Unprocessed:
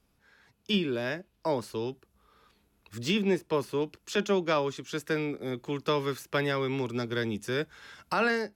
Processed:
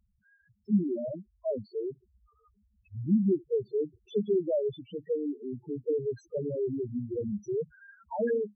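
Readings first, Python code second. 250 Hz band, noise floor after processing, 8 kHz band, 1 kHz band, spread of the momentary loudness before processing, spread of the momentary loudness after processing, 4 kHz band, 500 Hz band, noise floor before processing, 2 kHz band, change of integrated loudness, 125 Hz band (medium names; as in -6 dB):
+1.0 dB, -73 dBFS, under -20 dB, under -10 dB, 9 LU, 11 LU, under -20 dB, 0.0 dB, -71 dBFS, under -15 dB, -1.5 dB, -1.5 dB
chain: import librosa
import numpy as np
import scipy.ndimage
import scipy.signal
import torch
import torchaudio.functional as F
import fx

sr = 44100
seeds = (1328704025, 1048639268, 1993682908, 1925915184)

y = fx.halfwave_hold(x, sr)
y = fx.spec_topn(y, sr, count=2)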